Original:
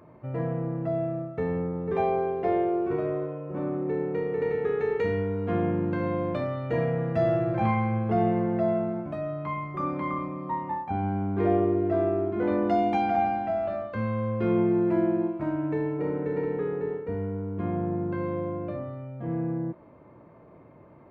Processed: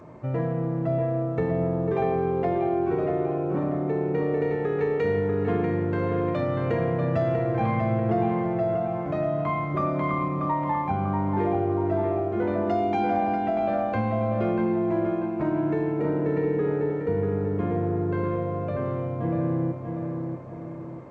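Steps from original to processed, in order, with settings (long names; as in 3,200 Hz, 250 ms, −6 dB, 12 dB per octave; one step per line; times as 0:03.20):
downward compressor 4 to 1, threshold −30 dBFS, peak gain reduction 9.5 dB
on a send: feedback echo with a low-pass in the loop 640 ms, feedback 46%, low-pass 2,800 Hz, level −5 dB
on the sum: level +6.5 dB
G.722 64 kbit/s 16,000 Hz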